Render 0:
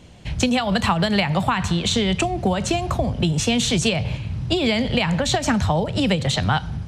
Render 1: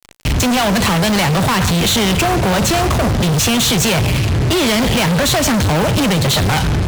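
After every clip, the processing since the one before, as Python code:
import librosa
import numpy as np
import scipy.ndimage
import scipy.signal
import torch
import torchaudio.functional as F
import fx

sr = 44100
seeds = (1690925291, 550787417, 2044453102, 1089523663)

y = fx.fuzz(x, sr, gain_db=44.0, gate_db=-38.0)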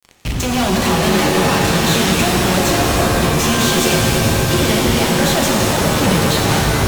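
y = fx.rev_shimmer(x, sr, seeds[0], rt60_s=3.5, semitones=7, shimmer_db=-2, drr_db=-1.0)
y = y * 10.0 ** (-6.0 / 20.0)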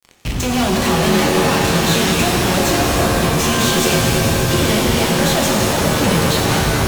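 y = fx.doubler(x, sr, ms=24.0, db=-11.0)
y = y * 10.0 ** (-1.0 / 20.0)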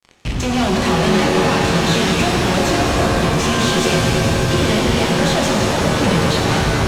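y = fx.air_absorb(x, sr, metres=53.0)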